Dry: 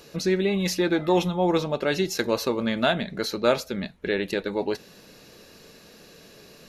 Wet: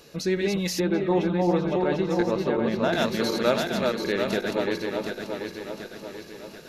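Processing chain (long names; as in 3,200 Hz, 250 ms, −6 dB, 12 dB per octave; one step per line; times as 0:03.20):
feedback delay that plays each chunk backwards 368 ms, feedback 69%, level −3 dB
0:00.80–0:02.93: low-pass filter 1,300 Hz 6 dB per octave
level −2 dB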